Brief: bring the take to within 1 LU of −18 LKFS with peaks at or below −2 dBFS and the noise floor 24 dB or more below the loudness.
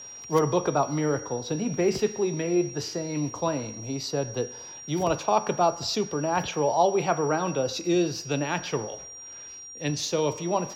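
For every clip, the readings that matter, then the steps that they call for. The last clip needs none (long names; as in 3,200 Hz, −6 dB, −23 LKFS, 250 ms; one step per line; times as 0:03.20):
crackle rate 19 per second; interfering tone 5,700 Hz; level of the tone −40 dBFS; integrated loudness −27.0 LKFS; sample peak −8.5 dBFS; target loudness −18.0 LKFS
→ click removal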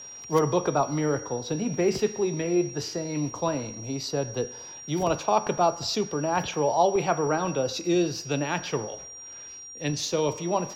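crackle rate 0.19 per second; interfering tone 5,700 Hz; level of the tone −40 dBFS
→ notch filter 5,700 Hz, Q 30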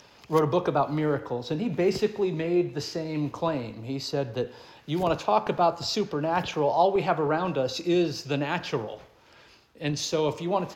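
interfering tone none found; integrated loudness −27.0 LKFS; sample peak −8.5 dBFS; target loudness −18.0 LKFS
→ level +9 dB
brickwall limiter −2 dBFS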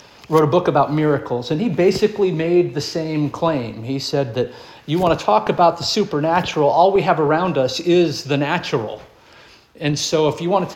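integrated loudness −18.0 LKFS; sample peak −2.0 dBFS; background noise floor −46 dBFS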